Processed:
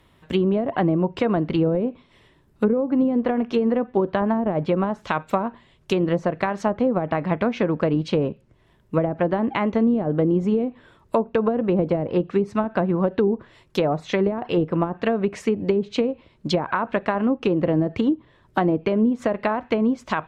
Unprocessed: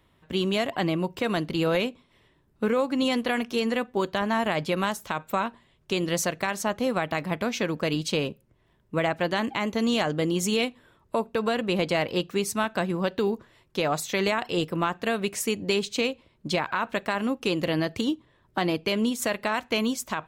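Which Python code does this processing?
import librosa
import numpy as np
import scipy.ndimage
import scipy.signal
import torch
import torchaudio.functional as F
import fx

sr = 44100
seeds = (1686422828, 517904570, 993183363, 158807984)

y = fx.env_lowpass_down(x, sr, base_hz=420.0, full_db=-20.0)
y = F.gain(torch.from_numpy(y), 6.5).numpy()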